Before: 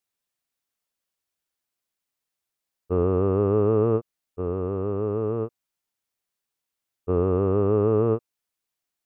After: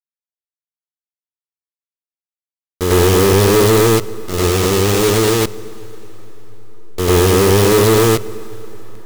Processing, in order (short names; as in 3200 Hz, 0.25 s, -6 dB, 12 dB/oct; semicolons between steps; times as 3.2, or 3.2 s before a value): level-crossing sampler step -27.5 dBFS; reverse echo 99 ms -7.5 dB; sample leveller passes 3; high shelf 2000 Hz +8 dB; plate-style reverb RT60 4.7 s, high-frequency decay 0.75×, DRR 18 dB; gain +3 dB